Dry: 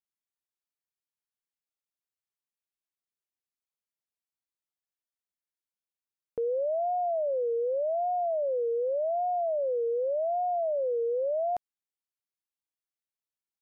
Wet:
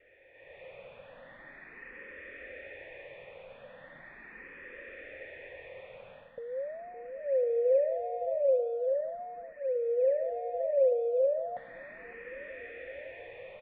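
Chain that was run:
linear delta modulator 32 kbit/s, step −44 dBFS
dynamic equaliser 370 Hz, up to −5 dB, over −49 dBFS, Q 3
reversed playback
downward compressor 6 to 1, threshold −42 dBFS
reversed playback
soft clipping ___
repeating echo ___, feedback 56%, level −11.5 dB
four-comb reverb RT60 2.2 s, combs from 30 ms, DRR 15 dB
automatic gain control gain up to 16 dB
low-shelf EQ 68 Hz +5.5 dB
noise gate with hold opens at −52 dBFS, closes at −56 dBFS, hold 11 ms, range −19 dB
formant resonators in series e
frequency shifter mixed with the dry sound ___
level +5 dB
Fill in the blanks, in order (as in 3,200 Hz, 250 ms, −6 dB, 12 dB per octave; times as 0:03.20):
−34.5 dBFS, 563 ms, +0.39 Hz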